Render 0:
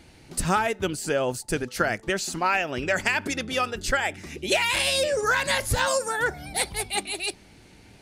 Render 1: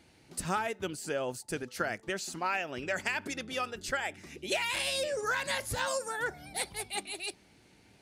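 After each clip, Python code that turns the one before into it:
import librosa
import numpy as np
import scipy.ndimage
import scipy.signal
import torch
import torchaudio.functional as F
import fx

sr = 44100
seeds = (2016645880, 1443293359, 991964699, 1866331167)

y = fx.highpass(x, sr, hz=110.0, slope=6)
y = y * librosa.db_to_amplitude(-8.5)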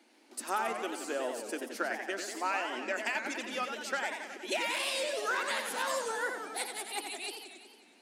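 y = scipy.signal.sosfilt(scipy.signal.cheby1(6, 3, 220.0, 'highpass', fs=sr, output='sos'), x)
y = fx.echo_warbled(y, sr, ms=92, feedback_pct=68, rate_hz=2.8, cents=212, wet_db=-6.5)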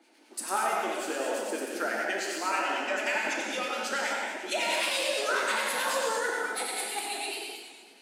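y = fx.harmonic_tremolo(x, sr, hz=9.2, depth_pct=70, crossover_hz=1400.0)
y = fx.rev_gated(y, sr, seeds[0], gate_ms=280, shape='flat', drr_db=-2.0)
y = y * librosa.db_to_amplitude(4.0)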